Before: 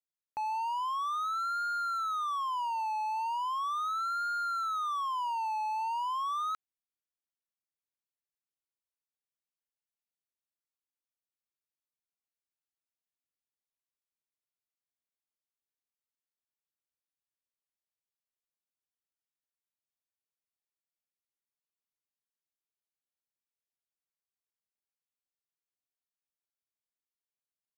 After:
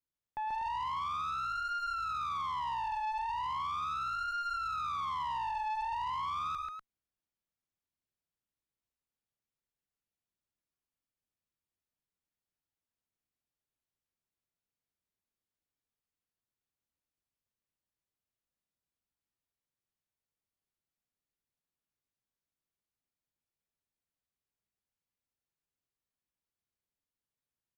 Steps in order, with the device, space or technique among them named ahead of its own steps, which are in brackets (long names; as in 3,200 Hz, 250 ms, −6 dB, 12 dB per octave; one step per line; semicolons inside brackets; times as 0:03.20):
low-shelf EQ 290 Hz +12 dB
loudspeakers that aren't time-aligned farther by 35 metres −12 dB, 47 metres −6 dB, 84 metres −10 dB
tube preamp driven hard (tube saturation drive 32 dB, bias 0.35; high-shelf EQ 4,600 Hz −6.5 dB)